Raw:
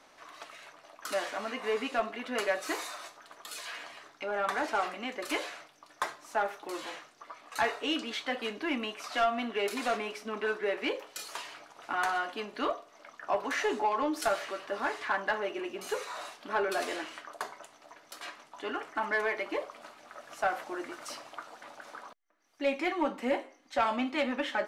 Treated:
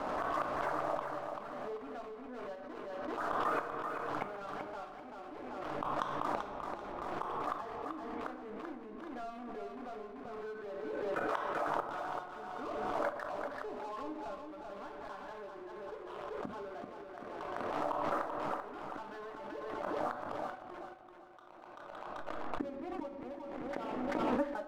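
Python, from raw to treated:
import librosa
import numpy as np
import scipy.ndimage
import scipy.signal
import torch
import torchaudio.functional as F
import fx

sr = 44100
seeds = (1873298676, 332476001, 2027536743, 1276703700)

y = fx.fade_out_tail(x, sr, length_s=2.66)
y = np.clip(y, -10.0 ** (-28.0 / 20.0), 10.0 ** (-28.0 / 20.0))
y = scipy.signal.sosfilt(scipy.signal.butter(4, 1300.0, 'lowpass', fs=sr, output='sos'), y)
y = fx.gate_flip(y, sr, shuts_db=-41.0, range_db=-31)
y = fx.leveller(y, sr, passes=2)
y = fx.highpass(y, sr, hz=420.0, slope=12, at=(11.23, 11.67))
y = fx.echo_feedback(y, sr, ms=387, feedback_pct=32, wet_db=-6)
y = fx.room_shoebox(y, sr, seeds[0], volume_m3=240.0, walls='mixed', distance_m=0.46)
y = fx.pre_swell(y, sr, db_per_s=20.0)
y = y * 10.0 ** (11.5 / 20.0)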